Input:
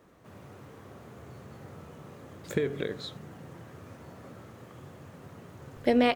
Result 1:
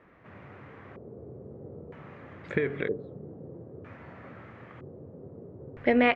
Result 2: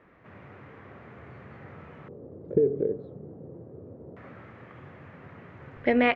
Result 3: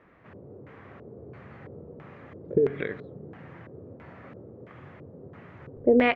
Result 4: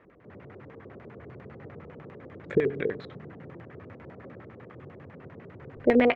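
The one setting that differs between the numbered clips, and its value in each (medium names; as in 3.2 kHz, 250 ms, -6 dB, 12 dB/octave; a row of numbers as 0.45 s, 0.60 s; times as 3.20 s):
LFO low-pass, rate: 0.52 Hz, 0.24 Hz, 1.5 Hz, 10 Hz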